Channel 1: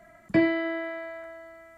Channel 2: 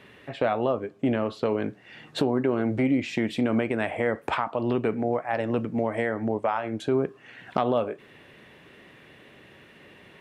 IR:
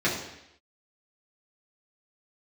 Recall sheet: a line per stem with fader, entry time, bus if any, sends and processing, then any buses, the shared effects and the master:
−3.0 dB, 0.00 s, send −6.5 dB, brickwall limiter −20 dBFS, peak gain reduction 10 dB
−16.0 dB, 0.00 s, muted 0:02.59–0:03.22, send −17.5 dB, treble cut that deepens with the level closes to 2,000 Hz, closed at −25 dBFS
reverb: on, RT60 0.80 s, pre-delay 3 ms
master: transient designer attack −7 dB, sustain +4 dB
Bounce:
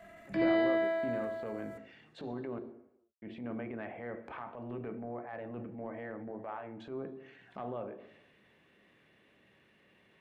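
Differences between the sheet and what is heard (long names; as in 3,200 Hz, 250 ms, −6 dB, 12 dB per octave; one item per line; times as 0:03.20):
stem 2: send −17.5 dB → −11.5 dB
reverb return −9.0 dB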